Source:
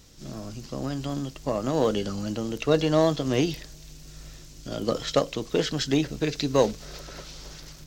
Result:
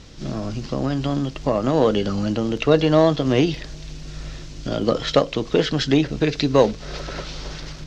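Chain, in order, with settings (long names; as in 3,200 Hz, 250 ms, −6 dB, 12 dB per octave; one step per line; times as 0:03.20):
low-pass filter 4,200 Hz 12 dB per octave
in parallel at +2 dB: downward compressor, threshold −34 dBFS, peak gain reduction 18 dB
on the sum: level +4 dB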